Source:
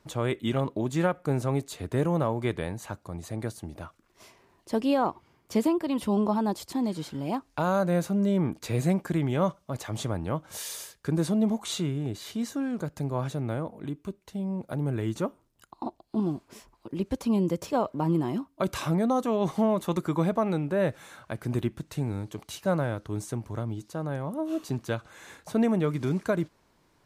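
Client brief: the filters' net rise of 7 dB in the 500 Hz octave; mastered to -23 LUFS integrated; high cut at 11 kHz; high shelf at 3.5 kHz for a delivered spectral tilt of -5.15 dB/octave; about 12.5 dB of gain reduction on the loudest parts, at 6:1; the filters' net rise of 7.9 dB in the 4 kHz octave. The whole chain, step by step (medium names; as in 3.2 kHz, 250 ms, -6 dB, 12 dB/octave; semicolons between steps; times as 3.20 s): low-pass 11 kHz; peaking EQ 500 Hz +8.5 dB; treble shelf 3.5 kHz +4.5 dB; peaking EQ 4 kHz +6.5 dB; compression 6:1, threshold -29 dBFS; trim +11 dB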